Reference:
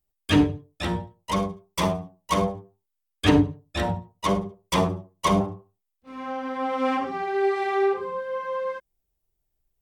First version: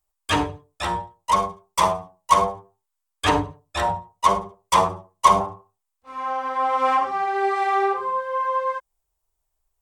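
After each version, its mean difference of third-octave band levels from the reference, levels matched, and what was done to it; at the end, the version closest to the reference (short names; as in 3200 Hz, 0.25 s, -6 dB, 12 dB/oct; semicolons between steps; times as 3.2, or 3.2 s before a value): 4.0 dB: graphic EQ 125/250/1000/8000 Hz -6/-10/+11/+7 dB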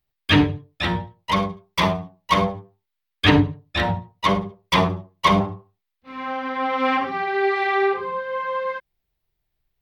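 2.5 dB: graphic EQ 125/1000/2000/4000/8000 Hz +6/+4/+8/+8/-9 dB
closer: second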